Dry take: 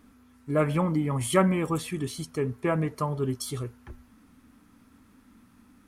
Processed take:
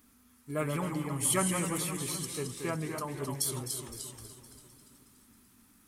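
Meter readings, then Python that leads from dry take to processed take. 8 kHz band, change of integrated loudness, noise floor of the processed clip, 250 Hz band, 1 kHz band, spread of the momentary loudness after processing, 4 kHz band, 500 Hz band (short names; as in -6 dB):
+7.0 dB, -5.0 dB, -63 dBFS, -8.0 dB, -6.0 dB, 14 LU, +0.5 dB, -8.5 dB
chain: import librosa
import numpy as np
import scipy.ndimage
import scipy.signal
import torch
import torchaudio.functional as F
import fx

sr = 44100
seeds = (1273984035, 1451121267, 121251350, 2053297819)

y = F.preemphasis(torch.from_numpy(x), 0.8).numpy()
y = fx.notch(y, sr, hz=540.0, q=12.0)
y = fx.echo_feedback(y, sr, ms=257, feedback_pct=59, wet_db=-12)
y = fx.echo_pitch(y, sr, ms=87, semitones=-1, count=2, db_per_echo=-6.0)
y = y * librosa.db_to_amplitude(4.5)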